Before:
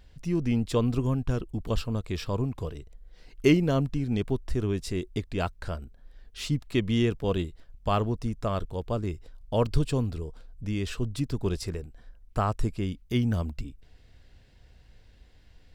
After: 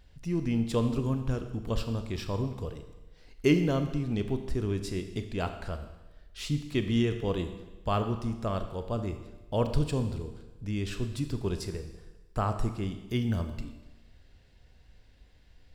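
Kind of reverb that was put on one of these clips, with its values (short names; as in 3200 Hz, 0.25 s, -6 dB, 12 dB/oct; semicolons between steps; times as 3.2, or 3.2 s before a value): Schroeder reverb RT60 1.1 s, combs from 27 ms, DRR 7.5 dB; gain -3 dB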